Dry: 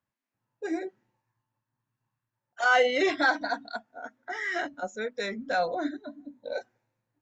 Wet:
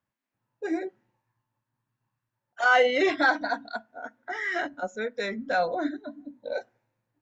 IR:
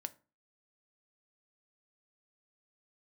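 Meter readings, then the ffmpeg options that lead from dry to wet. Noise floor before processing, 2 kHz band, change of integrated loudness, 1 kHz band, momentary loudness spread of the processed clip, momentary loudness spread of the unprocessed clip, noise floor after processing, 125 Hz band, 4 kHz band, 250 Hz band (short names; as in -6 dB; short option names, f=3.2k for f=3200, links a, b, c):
under -85 dBFS, +1.5 dB, +1.5 dB, +2.0 dB, 19 LU, 19 LU, under -85 dBFS, n/a, 0.0 dB, +2.0 dB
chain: -filter_complex "[0:a]bass=f=250:g=0,treble=f=4k:g=-5,asplit=2[a][b];[1:a]atrim=start_sample=2205[c];[b][c]afir=irnorm=-1:irlink=0,volume=-9dB[d];[a][d]amix=inputs=2:normalize=0"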